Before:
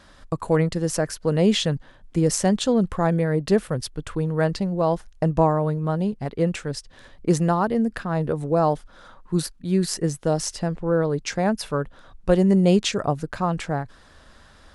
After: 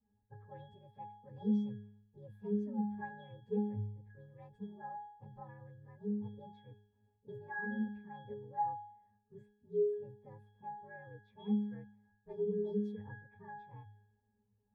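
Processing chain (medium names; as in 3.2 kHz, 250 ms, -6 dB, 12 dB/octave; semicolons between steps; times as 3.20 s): frequency axis rescaled in octaves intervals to 121%; level-controlled noise filter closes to 800 Hz, open at -20 dBFS; pitch-class resonator G#, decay 0.7 s; trim +1.5 dB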